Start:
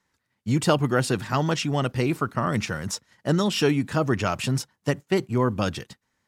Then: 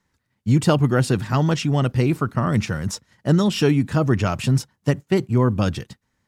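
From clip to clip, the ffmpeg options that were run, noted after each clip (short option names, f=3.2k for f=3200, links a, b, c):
-af "lowshelf=f=240:g=9.5"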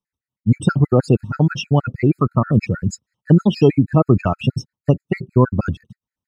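-af "afftdn=nr=23:nf=-27,afftfilt=real='re*gt(sin(2*PI*6.3*pts/sr)*(1-2*mod(floor(b*sr/1024/1300),2)),0)':imag='im*gt(sin(2*PI*6.3*pts/sr)*(1-2*mod(floor(b*sr/1024/1300),2)),0)':win_size=1024:overlap=0.75,volume=6dB"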